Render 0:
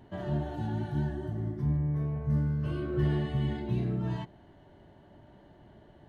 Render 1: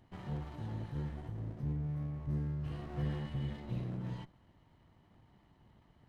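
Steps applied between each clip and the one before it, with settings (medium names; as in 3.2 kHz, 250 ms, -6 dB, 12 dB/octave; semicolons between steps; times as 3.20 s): comb filter that takes the minimum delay 1 ms; peaking EQ 730 Hz -4.5 dB 2.3 oct; trim -6.5 dB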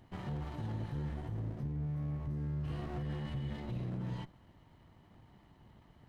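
peak limiter -35.5 dBFS, peak gain reduction 10 dB; trim +4 dB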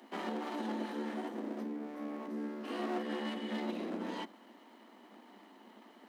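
steep high-pass 210 Hz 96 dB/octave; trim +8.5 dB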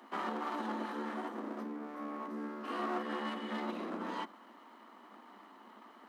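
peaking EQ 1.2 kHz +11.5 dB 0.83 oct; trim -2.5 dB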